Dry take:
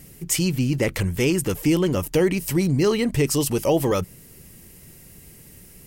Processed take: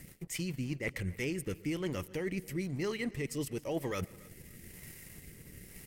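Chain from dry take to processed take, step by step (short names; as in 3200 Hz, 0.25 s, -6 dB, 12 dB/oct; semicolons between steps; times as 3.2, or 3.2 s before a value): bell 2000 Hz +9.5 dB 0.51 oct; reverse; compressor 6:1, threshold -32 dBFS, peak gain reduction 16 dB; reverse; transient shaper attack +1 dB, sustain -6 dB; crossover distortion -55.5 dBFS; rotary speaker horn 7 Hz, later 1 Hz, at 0.47; feedback echo 0.279 s, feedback 31%, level -23 dB; on a send at -22 dB: reverb RT60 0.60 s, pre-delay 0.113 s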